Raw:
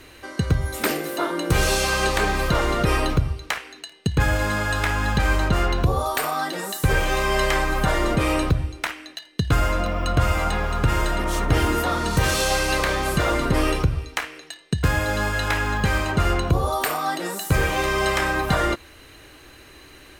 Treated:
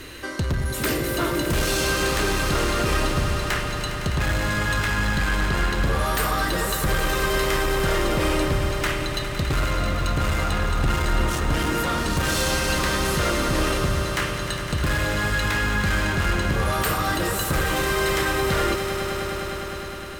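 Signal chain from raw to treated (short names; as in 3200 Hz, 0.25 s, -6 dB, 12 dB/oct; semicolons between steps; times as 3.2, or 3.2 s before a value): bell 770 Hz -7 dB 0.59 oct; notch 2300 Hz, Q 16; in parallel at +1 dB: vocal rider 0.5 s; on the sum: soft clip -16 dBFS, distortion -9 dB; swelling echo 0.102 s, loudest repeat 5, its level -12 dB; gain -3.5 dB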